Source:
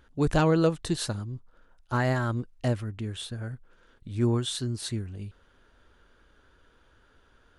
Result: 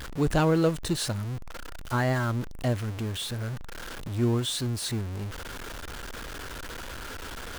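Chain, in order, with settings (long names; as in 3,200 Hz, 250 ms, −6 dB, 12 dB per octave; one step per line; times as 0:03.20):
converter with a step at zero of −31 dBFS
level −1.5 dB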